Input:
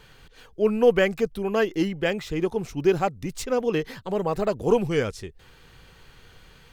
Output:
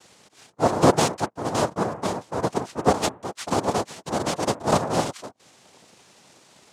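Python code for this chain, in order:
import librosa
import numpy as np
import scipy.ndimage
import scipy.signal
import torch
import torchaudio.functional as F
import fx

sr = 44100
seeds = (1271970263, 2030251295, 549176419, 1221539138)

y = fx.median_filter(x, sr, points=25, at=(1.3, 2.43))
y = fx.noise_vocoder(y, sr, seeds[0], bands=2)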